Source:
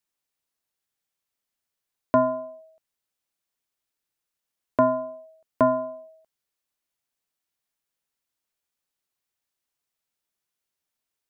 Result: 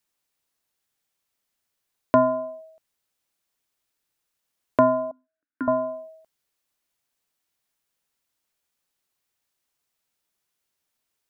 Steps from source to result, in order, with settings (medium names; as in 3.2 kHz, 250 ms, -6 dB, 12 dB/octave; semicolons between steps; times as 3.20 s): in parallel at -2 dB: compression, threshold -27 dBFS, peak gain reduction 11 dB; 5.11–5.68 s: on the sum: two resonant band-passes 670 Hz, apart 2.4 oct